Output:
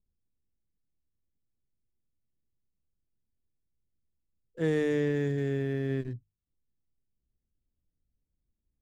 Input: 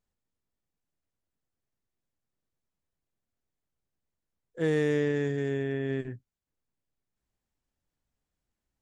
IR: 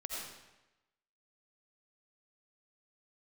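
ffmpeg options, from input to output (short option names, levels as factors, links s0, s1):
-filter_complex "[0:a]lowshelf=f=140:g=9.5,bandreject=f=50:t=h:w=6,bandreject=f=100:t=h:w=6,bandreject=f=150:t=h:w=6,acrossover=split=550[s0][s1];[s1]aeval=exprs='sgn(val(0))*max(abs(val(0))-0.0015,0)':c=same[s2];[s0][s2]amix=inputs=2:normalize=0,volume=0.794"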